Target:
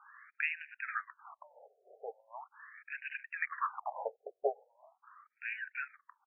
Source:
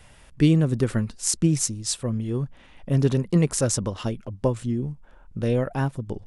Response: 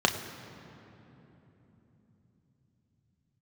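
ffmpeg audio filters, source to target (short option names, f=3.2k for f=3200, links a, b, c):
-af "aecho=1:1:1.5:0.33,highpass=f=580:t=q:w=0.5412,highpass=f=580:t=q:w=1.307,lowpass=f=2.9k:t=q:w=0.5176,lowpass=f=2.9k:t=q:w=0.7071,lowpass=f=2.9k:t=q:w=1.932,afreqshift=-230,afftfilt=real='re*between(b*sr/1024,540*pow(2100/540,0.5+0.5*sin(2*PI*0.4*pts/sr))/1.41,540*pow(2100/540,0.5+0.5*sin(2*PI*0.4*pts/sr))*1.41)':imag='im*between(b*sr/1024,540*pow(2100/540,0.5+0.5*sin(2*PI*0.4*pts/sr))/1.41,540*pow(2100/540,0.5+0.5*sin(2*PI*0.4*pts/sr))*1.41)':win_size=1024:overlap=0.75,volume=4.5dB"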